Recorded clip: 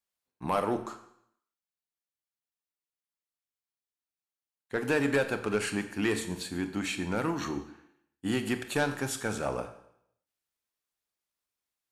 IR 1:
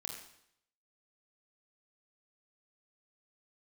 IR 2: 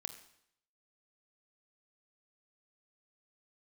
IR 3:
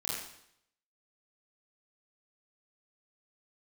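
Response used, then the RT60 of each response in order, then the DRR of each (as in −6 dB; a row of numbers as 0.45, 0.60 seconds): 2; 0.70, 0.70, 0.70 seconds; 1.0, 8.5, −6.5 decibels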